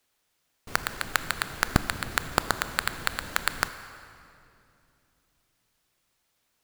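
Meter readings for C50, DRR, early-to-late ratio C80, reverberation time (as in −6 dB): 11.5 dB, 11.0 dB, 12.5 dB, 2.7 s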